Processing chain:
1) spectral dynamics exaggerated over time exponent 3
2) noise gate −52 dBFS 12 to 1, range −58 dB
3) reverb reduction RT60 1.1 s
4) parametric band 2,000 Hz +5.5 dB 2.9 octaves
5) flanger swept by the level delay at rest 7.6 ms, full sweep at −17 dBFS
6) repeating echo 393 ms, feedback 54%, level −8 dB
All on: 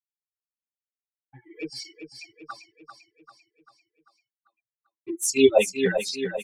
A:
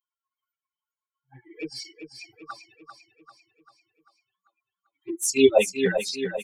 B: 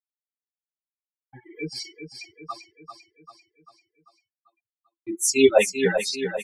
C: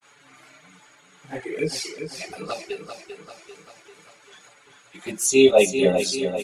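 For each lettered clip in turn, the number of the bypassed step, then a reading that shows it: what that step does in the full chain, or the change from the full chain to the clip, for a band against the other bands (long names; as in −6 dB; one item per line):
2, change in momentary loudness spread +4 LU
5, 250 Hz band −2.0 dB
1, 2 kHz band −1.5 dB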